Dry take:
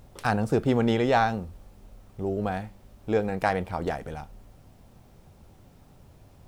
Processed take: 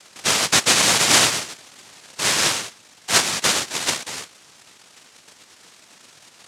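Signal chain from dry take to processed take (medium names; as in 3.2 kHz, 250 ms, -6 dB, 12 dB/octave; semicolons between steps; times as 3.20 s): 1.47–2.52 s: bass shelf 280 Hz +6.5 dB; noise-vocoded speech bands 1; trim +6 dB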